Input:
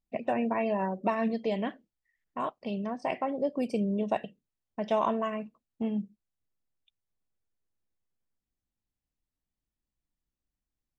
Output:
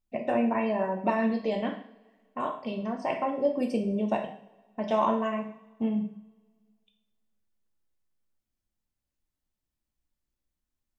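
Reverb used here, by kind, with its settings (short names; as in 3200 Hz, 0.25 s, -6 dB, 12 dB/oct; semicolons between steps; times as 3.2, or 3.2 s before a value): two-slope reverb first 0.53 s, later 1.9 s, from -22 dB, DRR 2.5 dB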